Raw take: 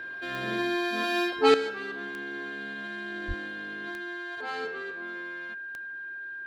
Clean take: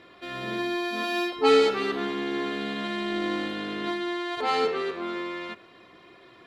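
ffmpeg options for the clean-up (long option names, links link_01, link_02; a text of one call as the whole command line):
ffmpeg -i in.wav -filter_complex "[0:a]adeclick=threshold=4,bandreject=frequency=1600:width=30,asplit=3[link_01][link_02][link_03];[link_01]afade=type=out:start_time=3.27:duration=0.02[link_04];[link_02]highpass=frequency=140:width=0.5412,highpass=frequency=140:width=1.3066,afade=type=in:start_time=3.27:duration=0.02,afade=type=out:start_time=3.39:duration=0.02[link_05];[link_03]afade=type=in:start_time=3.39:duration=0.02[link_06];[link_04][link_05][link_06]amix=inputs=3:normalize=0,asetnsamples=nb_out_samples=441:pad=0,asendcmd='1.54 volume volume 11dB',volume=0dB" out.wav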